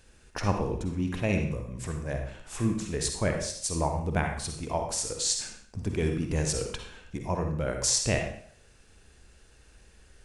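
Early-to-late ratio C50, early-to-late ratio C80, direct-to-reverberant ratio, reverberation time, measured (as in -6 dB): 4.0 dB, 8.0 dB, 3.5 dB, 0.55 s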